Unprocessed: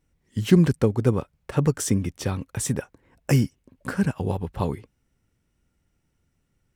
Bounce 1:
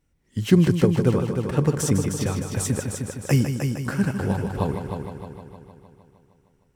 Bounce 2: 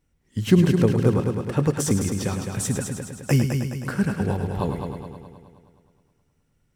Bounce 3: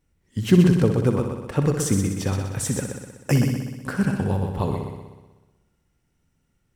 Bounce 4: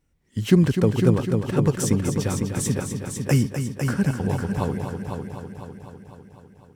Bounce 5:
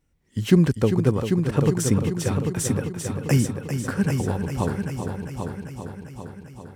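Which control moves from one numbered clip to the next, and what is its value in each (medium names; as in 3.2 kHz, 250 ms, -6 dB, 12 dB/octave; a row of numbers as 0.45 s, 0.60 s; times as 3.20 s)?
multi-head delay, time: 154 ms, 105 ms, 62 ms, 251 ms, 396 ms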